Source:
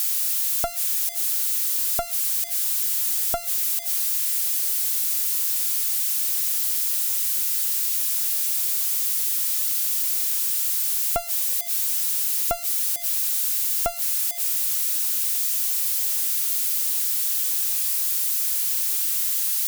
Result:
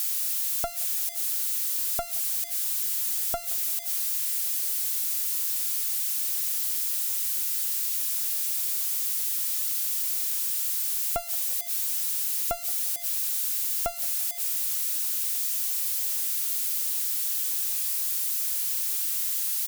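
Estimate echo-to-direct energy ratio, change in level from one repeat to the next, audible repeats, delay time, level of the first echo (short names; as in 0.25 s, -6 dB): -20.5 dB, -6.0 dB, 3, 0.173 s, -21.5 dB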